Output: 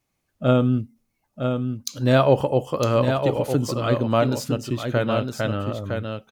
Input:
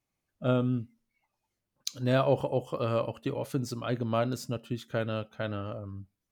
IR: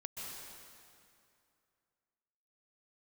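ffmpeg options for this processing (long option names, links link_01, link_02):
-filter_complex "[0:a]asettb=1/sr,asplit=3[link_01][link_02][link_03];[link_01]atrim=end=0.814[link_04];[link_02]atrim=start=0.81:end=1.89,asetpts=PTS-STARTPTS,afade=type=in:duration=0.004:curve=qsin,afade=type=out:start_time=1.076:duration=0.004:curve=qsin,equalizer=frequency=2200:width_type=o:width=2:gain=-12[link_05];[link_03]atrim=start=1.886[link_06];[link_04][link_05]acrossfade=duration=0.004:curve1=hsin:curve2=qsin[link_07];[link_07][link_06]acrossfade=duration=0.004:curve1=qsin:curve2=hsin,asplit=2[link_08][link_09];[link_09]aecho=0:1:959:0.501[link_10];[link_08][link_10]amix=inputs=2:normalize=0,volume=8.5dB"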